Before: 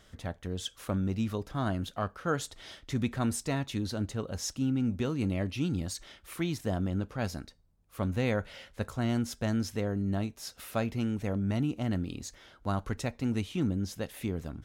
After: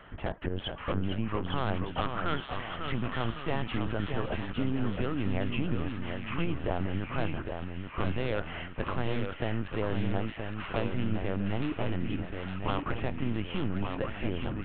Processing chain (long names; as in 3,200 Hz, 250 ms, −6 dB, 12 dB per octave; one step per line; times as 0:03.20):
elliptic low-pass filter 3,000 Hz, stop band 40 dB
parametric band 1,000 Hz +7.5 dB 1.2 octaves
in parallel at −4.5 dB: sine wavefolder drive 11 dB, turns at −14 dBFS
on the sum: downward compressor 6 to 1, threshold −23 dBFS, peak gain reduction 6 dB
linear-prediction vocoder at 8 kHz pitch kept
delay with pitch and tempo change per echo 413 ms, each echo −1 semitone, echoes 2, each echo −6 dB
delay with a high-pass on its return 861 ms, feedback 58%, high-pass 2,100 Hz, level −3 dB
level −5.5 dB